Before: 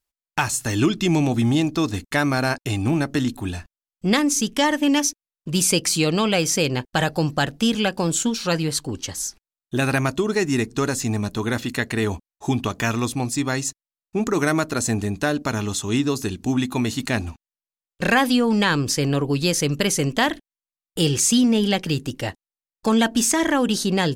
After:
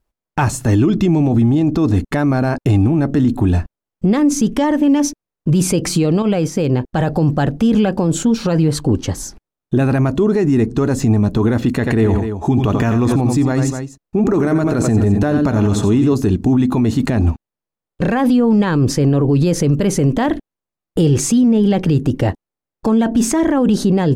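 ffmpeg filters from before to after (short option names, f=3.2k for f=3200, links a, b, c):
-filter_complex "[0:a]asettb=1/sr,asplit=3[a][b][c];[a]atrim=end=6.224[d];[b]atrim=start=6.22:end=6.95,asetpts=PTS-STARTPTS,afade=t=in:d=0.004:c=qsin,afade=t=out:st=0.726:d=0.004:c=qsin,acompressor=threshold=-27dB:ratio=5:attack=3.2:release=140:knee=1:detection=peak[e];[c]atrim=start=6.946[f];[d][e]acrossfade=d=0.004:c1=hsin:c2=qsin[g];[g][f]acrossfade=d=0.004:c1=qsin:c2=hsin,asettb=1/sr,asplit=3[h][i][j];[h]atrim=end=11.704[k];[i]atrim=start=11.7:end=16.15,asetpts=PTS-STARTPTS,afade=t=in:d=0.004:c=qsin,afade=t=out:st=4.446:d=0.004:c=qsin,aecho=1:1:83|89|250:0.1|0.335|0.158,atrim=end_sample=196245[l];[j]atrim=start=16.146[m];[k][l]acrossfade=d=0.004:c1=hsin:c2=qsin[n];[n][m]acrossfade=d=0.004:c1=qsin:c2=hsin,tiltshelf=f=1.4k:g=10,alimiter=level_in=13.5dB:limit=-1dB:release=50:level=0:latency=1,volume=-6dB"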